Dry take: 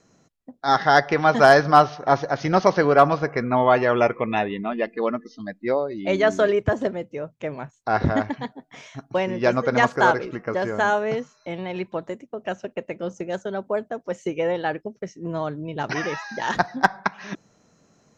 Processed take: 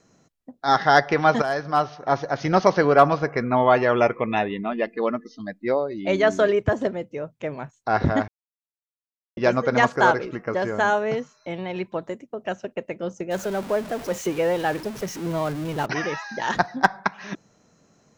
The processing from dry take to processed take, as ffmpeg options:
ffmpeg -i in.wav -filter_complex "[0:a]asettb=1/sr,asplit=3[link_01][link_02][link_03];[link_01]atrim=end=13.314[link_04];[link_02]atrim=start=13.31:end=15.86,asetpts=PTS-STARTPTS,afade=type=in:duration=0.004:curve=qsin,afade=type=out:start_time=2.546:duration=0.004:curve=qsin,aeval=exprs='val(0)+0.5*0.0282*sgn(val(0))':channel_layout=same[link_05];[link_03]atrim=start=15.856[link_06];[link_04][link_05]acrossfade=duration=0.004:curve1=hsin:curve2=qsin[link_07];[link_07][link_06]acrossfade=duration=0.004:curve1=qsin:curve2=hsin,asplit=4[link_08][link_09][link_10][link_11];[link_08]atrim=end=1.42,asetpts=PTS-STARTPTS,afade=type=out:start_time=1.416:duration=0.004:curve=hsin:silence=0.177828[link_12];[link_09]atrim=start=1.42:end=8.28,asetpts=PTS-STARTPTS,afade=type=in:duration=1.09:silence=0.177828,afade=type=out:start_time=6.856:duration=0.004:curve=hsin[link_13];[link_10]atrim=start=8.28:end=9.37,asetpts=PTS-STARTPTS,volume=0[link_14];[link_11]atrim=start=9.37,asetpts=PTS-STARTPTS,afade=type=in:duration=0.004:curve=hsin[link_15];[link_12][link_13][link_14][link_15]concat=n=4:v=0:a=1" out.wav

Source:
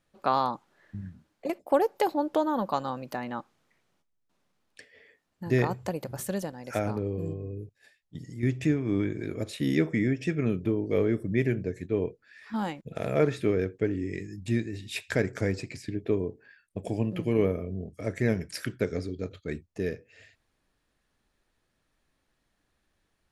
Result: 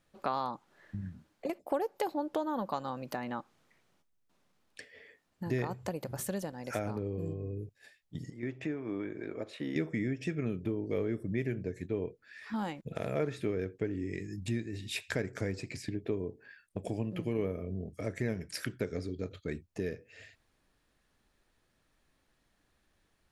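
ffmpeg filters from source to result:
ffmpeg -i in.wav -filter_complex "[0:a]asettb=1/sr,asplit=3[link_01][link_02][link_03];[link_01]atrim=end=8.304[link_04];[link_02]atrim=start=8.3:end=9.76,asetpts=PTS-STARTPTS,afade=type=in:duration=0.004:curve=qsin,afade=type=out:start_time=1.456:duration=0.004:curve=qsin,bandpass=frequency=880:width_type=q:width=0.67[link_05];[link_03]atrim=start=9.756[link_06];[link_04][link_05]acrossfade=duration=0.004:curve1=hsin:curve2=qsin[link_07];[link_07][link_06]acrossfade=duration=0.004:curve1=qsin:curve2=hsin,acompressor=threshold=-38dB:ratio=2,volume=1.5dB" out.wav

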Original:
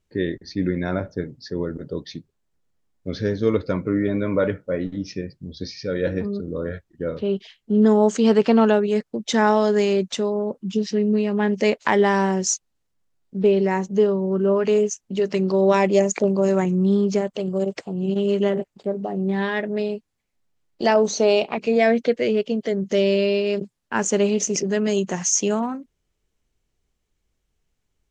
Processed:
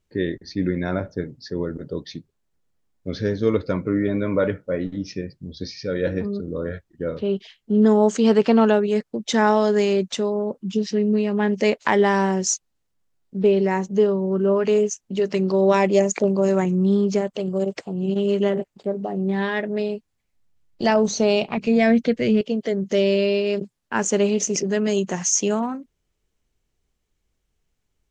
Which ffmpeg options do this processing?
ffmpeg -i in.wav -filter_complex "[0:a]asettb=1/sr,asplit=3[link_01][link_02][link_03];[link_01]atrim=end=19.904[link_04];[link_02]atrim=start=19.9:end=22.41,asetpts=PTS-STARTPTS,afade=type=in:duration=0.004:curve=qsin,afade=type=out:start_time=2.506:duration=0.004:curve=qsin,asubboost=boost=7.5:cutoff=200[link_05];[link_03]atrim=start=22.406[link_06];[link_04][link_05]acrossfade=duration=0.004:curve1=hsin:curve2=qsin[link_07];[link_07][link_06]acrossfade=duration=0.004:curve1=qsin:curve2=hsin" out.wav

